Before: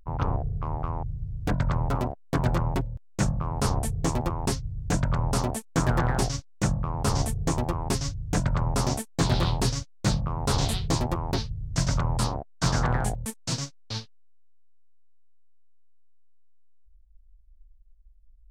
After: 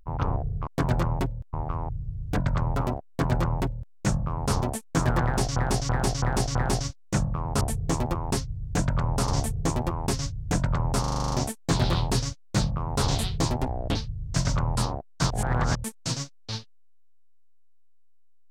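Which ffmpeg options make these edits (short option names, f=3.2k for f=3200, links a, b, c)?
-filter_complex "[0:a]asplit=22[a][b][c][d][e][f][g][h][i][j][k][l][m][n][o][p][q][r][s][t][u][v];[a]atrim=end=0.672[w];[b]atrim=start=2.218:end=3.082[x];[c]atrim=start=0.668:end=3.762[y];[d]atrim=start=5.428:end=6.372[z];[e]atrim=start=6.038:end=6.372[aa];[f]atrim=start=6.038:end=6.372[ab];[g]atrim=start=6.038:end=6.372[ac];[h]atrim=start=6.038:end=7.102[ad];[i]atrim=start=3.758:end=5.432[ae];[j]atrim=start=7.098:end=8.862[af];[k]atrim=start=8.818:end=8.862[ag];[l]atrim=start=8.818:end=8.862[ah];[m]atrim=start=8.818:end=8.862[ai];[n]atrim=start=8.818:end=8.862[aj];[o]atrim=start=8.818:end=8.862[ak];[p]atrim=start=8.818:end=8.862[al];[q]atrim=start=8.818:end=8.862[am];[r]atrim=start=8.818:end=11.124[an];[s]atrim=start=11.12:end=11.37,asetpts=PTS-STARTPTS,asetrate=33075,aresample=44100[ao];[t]atrim=start=11.366:end=12.722[ap];[u]atrim=start=12.718:end=13.172,asetpts=PTS-STARTPTS,areverse[aq];[v]atrim=start=13.168[ar];[w][x]acrossfade=d=0.004:c1=hsin:c2=hsin[as];[as][y]acrossfade=d=0.004:c1=hsin:c2=hsin[at];[at][z]acrossfade=d=0.004:c1=hsin:c2=hsin[au];[au][aa]acrossfade=d=0.004:c1=hsin:c2=hsin[av];[av][ab]acrossfade=d=0.004:c1=hsin:c2=hsin[aw];[aw][ac]acrossfade=d=0.004:c1=hsin:c2=hsin[ax];[ax][ad]acrossfade=d=0.004:c1=hsin:c2=hsin[ay];[ay][ae]acrossfade=d=0.004:c1=hsin:c2=hsin[az];[az][af]acrossfade=d=0.004:c1=hsin:c2=hsin[ba];[ba][ag]acrossfade=d=0.004:c1=hsin:c2=hsin[bb];[bb][ah]acrossfade=d=0.004:c1=hsin:c2=hsin[bc];[bc][ai]acrossfade=d=0.004:c1=hsin:c2=hsin[bd];[bd][aj]acrossfade=d=0.004:c1=hsin:c2=hsin[be];[be][ak]acrossfade=d=0.004:c1=hsin:c2=hsin[bf];[bf][al]acrossfade=d=0.004:c1=hsin:c2=hsin[bg];[bg][am]acrossfade=d=0.004:c1=hsin:c2=hsin[bh];[bh][an]acrossfade=d=0.004:c1=hsin:c2=hsin[bi];[bi][ao]acrossfade=d=0.004:c1=hsin:c2=hsin[bj];[bj][ap]acrossfade=d=0.004:c1=hsin:c2=hsin[bk];[bk][aq]acrossfade=d=0.004:c1=hsin:c2=hsin[bl];[bl][ar]acrossfade=d=0.004:c1=hsin:c2=hsin"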